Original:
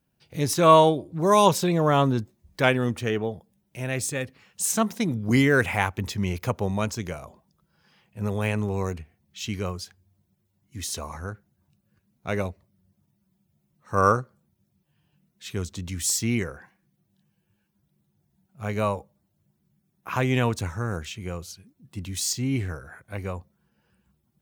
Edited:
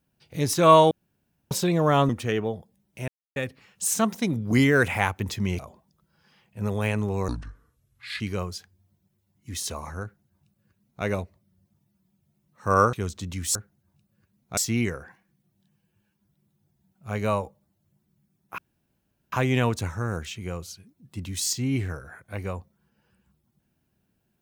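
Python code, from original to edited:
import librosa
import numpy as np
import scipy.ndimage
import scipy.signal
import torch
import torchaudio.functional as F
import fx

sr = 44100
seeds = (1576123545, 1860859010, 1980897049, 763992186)

y = fx.edit(x, sr, fx.room_tone_fill(start_s=0.91, length_s=0.6),
    fx.cut(start_s=2.09, length_s=0.78),
    fx.silence(start_s=3.86, length_s=0.28),
    fx.cut(start_s=6.37, length_s=0.82),
    fx.speed_span(start_s=8.88, length_s=0.59, speed=0.64),
    fx.duplicate(start_s=11.29, length_s=1.02, to_s=16.11),
    fx.cut(start_s=14.2, length_s=1.29),
    fx.insert_room_tone(at_s=20.12, length_s=0.74), tone=tone)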